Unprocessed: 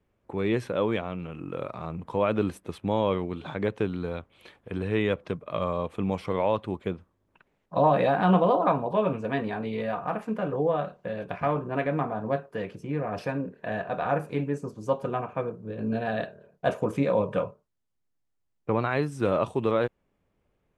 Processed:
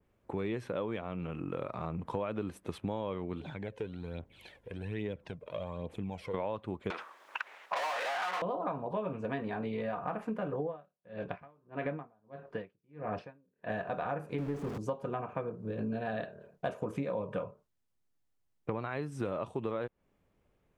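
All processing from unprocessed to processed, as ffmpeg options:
-filter_complex "[0:a]asettb=1/sr,asplit=3[a][b][c];[a]atrim=end=3.404[d];[b]atrim=start=3.4:end=6.34,asetpts=PTS-STARTPTS,afade=t=in:d=0.004:c=qsin,afade=t=out:st=2.936:d=0.004:c=qsin,equalizer=f=1.2k:t=o:w=0.3:g=-12,acompressor=threshold=-54dB:ratio=1.5:attack=3.2:release=140:knee=1:detection=peak,aphaser=in_gain=1:out_gain=1:delay=2.2:decay=0.53:speed=1.2:type=triangular[e];[c]atrim=start=6.336[f];[d][e]acrossfade=d=0.004:c1=hsin:c2=qsin[g];[g][f]acrossfade=d=0.004:c1=qsin:c2=hsin,asettb=1/sr,asplit=3[h][i][j];[h]atrim=end=6.904[k];[i]atrim=start=6.9:end=8.42,asetpts=PTS-STARTPTS,afade=t=in:d=0.004:c=qsin,afade=t=out:st=1.516:d=0.004:c=qsin,asplit=2[l][m];[m]highpass=f=720:p=1,volume=37dB,asoftclip=type=tanh:threshold=-9.5dB[n];[l][n]amix=inputs=2:normalize=0,lowpass=f=2.3k:p=1,volume=-6dB,highpass=1k[o];[j]atrim=start=8.416[p];[k][o]acrossfade=d=0.004:c1=hsin:c2=qsin[q];[q][p]acrossfade=d=0.004:c1=qsin:c2=hsin,asettb=1/sr,asplit=3[r][s][t];[r]atrim=end=10.634[u];[s]atrim=start=10.63:end=13.7,asetpts=PTS-STARTPTS,afade=t=in:d=0.004:c=qsin,afade=t=out:st=3.066:d=0.004:c=qsin,lowpass=4k,aeval=exprs='val(0)*pow(10,-39*(0.5-0.5*cos(2*PI*1.6*n/s))/20)':c=same[v];[t]atrim=start=13.696[w];[u][v]acrossfade=d=0.004:c1=hsin:c2=qsin[x];[x][w]acrossfade=d=0.004:c1=qsin:c2=hsin,asettb=1/sr,asplit=3[y][z][aa];[y]atrim=end=14.384[ab];[z]atrim=start=14.38:end=14.78,asetpts=PTS-STARTPTS,afade=t=in:d=0.004:c=qsin,afade=t=out:st=0.396:d=0.004:c=qsin,aeval=exprs='val(0)+0.5*0.0282*sgn(val(0))':c=same,highshelf=f=3.6k:g=-11.5[ac];[aa]atrim=start=14.776[ad];[ab][ac]acrossfade=d=0.004:c1=hsin:c2=qsin[ae];[ae][ad]acrossfade=d=0.004:c1=qsin:c2=hsin,acompressor=threshold=-32dB:ratio=6,adynamicequalizer=threshold=0.00224:dfrequency=2900:dqfactor=0.7:tfrequency=2900:tqfactor=0.7:attack=5:release=100:ratio=0.375:range=2.5:mode=cutabove:tftype=highshelf"

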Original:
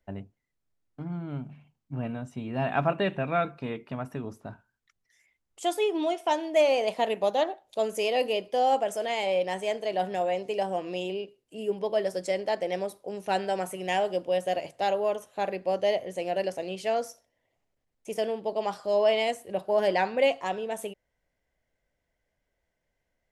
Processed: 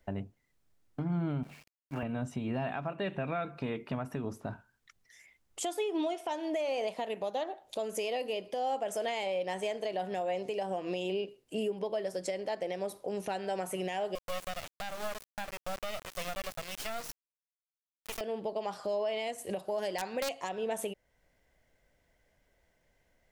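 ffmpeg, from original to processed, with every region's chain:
-filter_complex "[0:a]asettb=1/sr,asplit=3[a][b][c];[a]atrim=end=1.434[d];[b]atrim=start=1.43:end=2.03,asetpts=PTS-STARTPTS,afade=t=in:d=0.004:c=qsin,afade=t=out:st=0.596:d=0.004:c=qsin,highpass=f=630:p=1,equalizer=f=2.2k:t=o:w=1.3:g=7,aeval=exprs='val(0)*gte(abs(val(0)),0.00126)':c=same[e];[c]atrim=start=2.026[f];[d][e]acrossfade=d=0.004:c1=hsin:c2=qsin[g];[g][f]acrossfade=d=0.004:c1=qsin:c2=hsin,asettb=1/sr,asplit=3[h][i][j];[h]atrim=end=14.154[k];[i]atrim=start=14.15:end=18.21,asetpts=PTS-STARTPTS,afade=t=in:d=0.004:c=qsin,afade=t=out:st=4.056:d=0.004:c=qsin,highpass=840,acrusher=bits=4:dc=4:mix=0:aa=0.000001[l];[j]atrim=start=18.206[m];[k][l]acrossfade=d=0.004:c1=hsin:c2=qsin[n];[n][m]acrossfade=d=0.004:c1=qsin:c2=hsin,asettb=1/sr,asplit=3[o][p][q];[o]atrim=end=19.384[r];[p]atrim=start=19.38:end=20.49,asetpts=PTS-STARTPTS,afade=t=in:d=0.004:c=qsin,afade=t=out:st=1.106:d=0.004:c=qsin,equalizer=f=8.1k:t=o:w=1.9:g=9.5,aeval=exprs='(mod(4.47*val(0)+1,2)-1)/4.47':c=same[s];[q]atrim=start=20.486[t];[r][s]acrossfade=d=0.004:c1=hsin:c2=qsin[u];[u][t]acrossfade=d=0.004:c1=qsin:c2=hsin,acompressor=threshold=-33dB:ratio=4,alimiter=level_in=9dB:limit=-24dB:level=0:latency=1:release=428,volume=-9dB,volume=8dB"

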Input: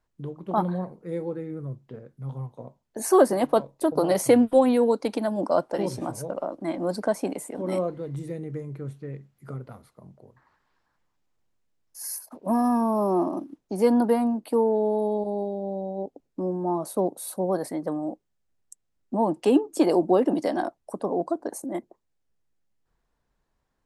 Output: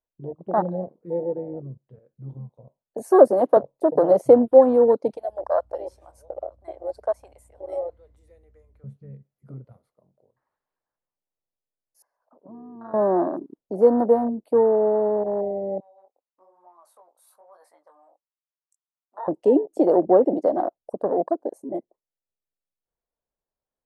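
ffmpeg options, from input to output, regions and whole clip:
-filter_complex "[0:a]asettb=1/sr,asplit=3[a][b][c];[a]atrim=end=2.984[d];[b]atrim=start=2.98:end=3.57,asetpts=PTS-STARTPTS,afade=t=in:d=0.004:c=qsin,afade=t=out:st=0.586:d=0.004:c=qsin,highpass=f=190:w=0.5412,highpass=f=190:w=1.3066,highshelf=f=4.8k:g=7,acompressor=mode=upward:threshold=-28dB:ratio=2.5:attack=3.2:release=140:knee=2.83:detection=peak[e];[c]atrim=start=3.566[f];[d][e]acrossfade=d=0.004:c1=hsin:c2=qsin[g];[g][f]acrossfade=d=0.004:c1=qsin:c2=hsin,asettb=1/sr,asplit=3[h][i][j];[h]atrim=end=5.134[k];[i]atrim=start=5.13:end=8.84,asetpts=PTS-STARTPTS,afade=t=in:d=0.004:c=qsin,afade=t=out:st=3.706:d=0.004:c=qsin,highpass=770,aeval=exprs='val(0)+0.00355*(sin(2*PI*60*n/s)+sin(2*PI*2*60*n/s)/2+sin(2*PI*3*60*n/s)/3+sin(2*PI*4*60*n/s)/4+sin(2*PI*5*60*n/s)/5)':c=same[l];[j]atrim=start=8.836[m];[k][l]acrossfade=d=0.004:c1=hsin:c2=qsin[n];[n][m]acrossfade=d=0.004:c1=qsin:c2=hsin,asettb=1/sr,asplit=3[o][p][q];[o]atrim=end=12.024[r];[p]atrim=start=12.02:end=12.94,asetpts=PTS-STARTPTS,afade=t=in:d=0.004:c=qsin,afade=t=out:st=0.916:d=0.004:c=qsin,acompressor=threshold=-38dB:ratio=6:attack=3.2:release=140:knee=1:detection=peak,lowpass=f=1.2k:t=q:w=2.4[s];[q]atrim=start=12.936[t];[r][s]acrossfade=d=0.004:c1=hsin:c2=qsin[u];[u][t]acrossfade=d=0.004:c1=qsin:c2=hsin,asettb=1/sr,asplit=3[v][w][x];[v]atrim=end=15.804[y];[w]atrim=start=15.8:end=19.28,asetpts=PTS-STARTPTS,afade=t=in:d=0.004:c=qsin,afade=t=out:st=3.476:d=0.004:c=qsin,acompressor=threshold=-25dB:ratio=12:attack=3.2:release=140:knee=1:detection=peak,flanger=delay=16.5:depth=7.3:speed=1.1,highpass=f=1.1k:t=q:w=2.8[z];[x]atrim=start=19.276[aa];[y][z]acrossfade=d=0.004:c1=hsin:c2=qsin[ab];[ab][aa]acrossfade=d=0.004:c1=qsin:c2=hsin,afwtdn=0.0447,equalizer=f=560:t=o:w=1.2:g=11,volume=-3.5dB"

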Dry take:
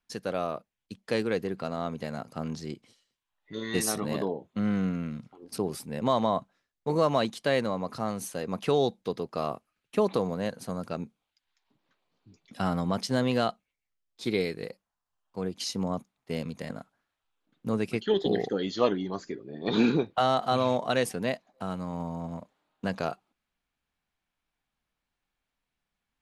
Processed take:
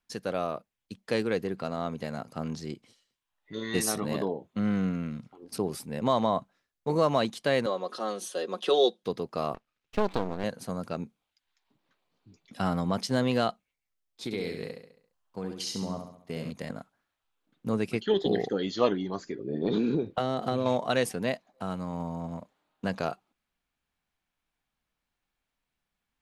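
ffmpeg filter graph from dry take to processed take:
-filter_complex "[0:a]asettb=1/sr,asplit=3[a][b][c];[a]atrim=end=7.664[d];[b]atrim=start=7.66:end=9.03,asetpts=PTS-STARTPTS,afade=t=in:d=0.004:c=qsin,afade=t=out:st=1.366:d=0.004:c=qsin,highpass=f=290:w=0.5412,highpass=f=290:w=1.3066,equalizer=f=450:t=q:w=4:g=5,equalizer=f=850:t=q:w=4:g=-6,equalizer=f=2.2k:t=q:w=4:g=-8,equalizer=f=3.4k:t=q:w=4:g=10,equalizer=f=7.5k:t=q:w=4:g=-4,lowpass=f=10k:w=0.5412,lowpass=f=10k:w=1.3066,aecho=1:1:5.5:0.67,atrim=end_sample=60417[e];[c]atrim=start=9.026[f];[d][e]acrossfade=d=0.004:c1=hsin:c2=qsin[g];[g][f]acrossfade=d=0.004:c1=qsin:c2=hsin,asettb=1/sr,asplit=3[h][i][j];[h]atrim=end=9.544[k];[i]atrim=start=9.54:end=10.44,asetpts=PTS-STARTPTS,afade=t=in:d=0.004:c=qsin,afade=t=out:st=0.896:d=0.004:c=qsin,lowpass=4.2k,highshelf=f=2.2k:g=5,aeval=exprs='max(val(0),0)':c=same[l];[j]atrim=start=10.436[m];[k][l]acrossfade=d=0.004:c1=hsin:c2=qsin[n];[n][m]acrossfade=d=0.004:c1=qsin:c2=hsin,asettb=1/sr,asplit=3[o][p][q];[o]atrim=end=14.244[r];[p]atrim=start=14.24:end=16.52,asetpts=PTS-STARTPTS,afade=t=in:d=0.004:c=qsin,afade=t=out:st=2.276:d=0.004:c=qsin,acompressor=threshold=-31dB:ratio=2.5:attack=3.2:release=140:knee=1:detection=peak,aecho=1:1:68|136|204|272|340|408:0.501|0.241|0.115|0.0554|0.0266|0.0128,atrim=end_sample=100548[s];[q]atrim=start=16.516[t];[r][s]acrossfade=d=0.004:c1=hsin:c2=qsin[u];[u][t]acrossfade=d=0.004:c1=qsin:c2=hsin,asettb=1/sr,asplit=3[v][w][x];[v]atrim=end=19.394[y];[w]atrim=start=19.39:end=20.66,asetpts=PTS-STARTPTS,afade=t=in:d=0.004:c=qsin,afade=t=out:st=1.266:d=0.004:c=qsin,lowshelf=f=600:t=q:w=1.5:g=7.5,acompressor=threshold=-22dB:ratio=16:attack=3.2:release=140:knee=1:detection=peak[z];[x]atrim=start=20.656[aa];[y][z]acrossfade=d=0.004:c1=hsin:c2=qsin[ab];[ab][aa]acrossfade=d=0.004:c1=qsin:c2=hsin"

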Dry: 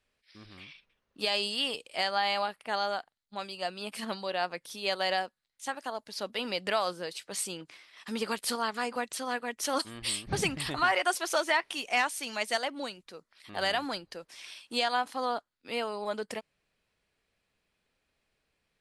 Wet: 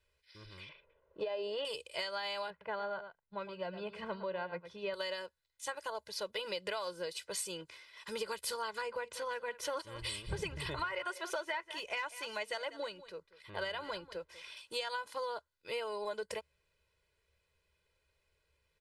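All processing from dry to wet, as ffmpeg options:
-filter_complex "[0:a]asettb=1/sr,asplit=3[a][b][c];[a]atrim=end=0.694[d];[b]atrim=start=0.69:end=1.65,asetpts=PTS-STARTPTS,afade=t=in:d=0.004:c=qsin,afade=t=out:st=0.956:d=0.004:c=qsin,lowpass=2.3k,equalizer=f=560:w=0.81:g=14.5,acompressor=threshold=-26dB:ratio=3:attack=3.2:release=140:knee=1:detection=peak[e];[c]atrim=start=1.646[f];[d][e]acrossfade=d=0.004:c1=hsin:c2=qsin[g];[g][f]acrossfade=d=0.004:c1=qsin:c2=hsin,asettb=1/sr,asplit=3[h][i][j];[h]atrim=end=2.504[k];[i]atrim=start=2.5:end=4.94,asetpts=PTS-STARTPTS,afade=t=in:d=0.004:c=qsin,afade=t=out:st=2.436:d=0.004:c=qsin,lowpass=1.9k,equalizer=f=170:t=o:w=0.59:g=9.5,aecho=1:1:110:0.237,atrim=end_sample=107604[l];[j]atrim=start=4.936[m];[k][l]acrossfade=d=0.004:c1=hsin:c2=qsin[n];[n][m]acrossfade=d=0.004:c1=qsin:c2=hsin,asettb=1/sr,asplit=3[o][p][q];[o]atrim=end=8.814[r];[p]atrim=start=8.81:end=14.57,asetpts=PTS-STARTPTS,afade=t=in:d=0.004:c=qsin,afade=t=out:st=5.756:d=0.004:c=qsin,bass=f=250:g=1,treble=f=4k:g=-9,aecho=1:1:192:0.126,atrim=end_sample=254016[s];[q]atrim=start=14.566[t];[r][s]acrossfade=d=0.004:c1=hsin:c2=qsin[u];[u][t]acrossfade=d=0.004:c1=qsin:c2=hsin,equalizer=f=72:t=o:w=0.25:g=13,aecho=1:1:2:0.94,acompressor=threshold=-31dB:ratio=6,volume=-4dB"

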